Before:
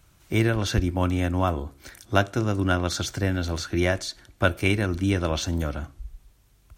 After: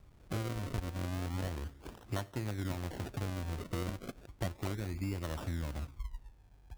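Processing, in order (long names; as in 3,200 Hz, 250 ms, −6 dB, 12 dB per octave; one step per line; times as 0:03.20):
low-shelf EQ 150 Hz +7 dB
downward compressor 4 to 1, threshold −30 dBFS, peak gain reduction 16 dB
sample-and-hold swept by an LFO 36×, swing 100% 0.34 Hz
level −5.5 dB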